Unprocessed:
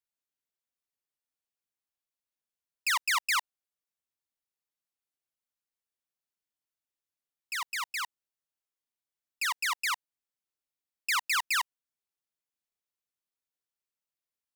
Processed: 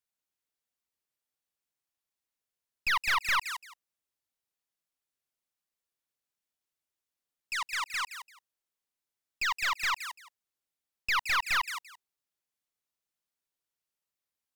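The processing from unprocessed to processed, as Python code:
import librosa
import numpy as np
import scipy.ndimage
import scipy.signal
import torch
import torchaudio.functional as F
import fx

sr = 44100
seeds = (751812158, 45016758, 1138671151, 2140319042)

y = fx.wow_flutter(x, sr, seeds[0], rate_hz=2.1, depth_cents=18.0)
y = fx.echo_feedback(y, sr, ms=170, feedback_pct=18, wet_db=-11)
y = fx.slew_limit(y, sr, full_power_hz=180.0)
y = F.gain(torch.from_numpy(y), 1.5).numpy()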